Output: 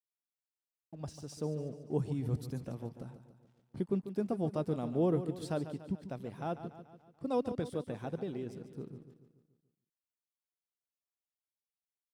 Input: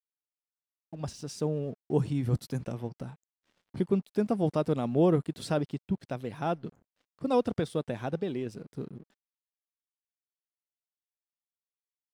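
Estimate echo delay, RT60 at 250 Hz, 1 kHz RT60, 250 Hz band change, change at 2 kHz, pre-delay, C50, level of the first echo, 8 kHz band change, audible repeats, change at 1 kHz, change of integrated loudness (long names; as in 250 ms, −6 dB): 144 ms, no reverb audible, no reverb audible, −5.5 dB, −9.0 dB, no reverb audible, no reverb audible, −11.5 dB, −7.0 dB, 5, −7.0 dB, −6.0 dB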